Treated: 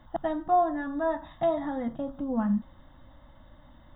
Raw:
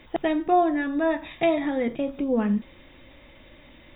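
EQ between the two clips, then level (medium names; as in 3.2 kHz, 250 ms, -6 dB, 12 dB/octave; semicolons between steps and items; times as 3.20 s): treble shelf 2.3 kHz -8.5 dB; static phaser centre 1 kHz, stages 4; +1.0 dB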